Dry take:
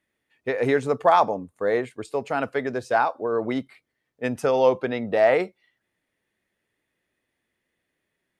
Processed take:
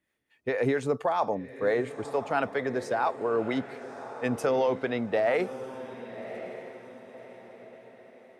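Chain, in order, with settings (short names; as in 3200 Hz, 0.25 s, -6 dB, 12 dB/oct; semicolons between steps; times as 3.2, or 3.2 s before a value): limiter -14 dBFS, peak gain reduction 8.5 dB; harmonic tremolo 4.4 Hz, depth 50%, crossover 480 Hz; on a send: diffused feedback echo 1.127 s, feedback 41%, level -12.5 dB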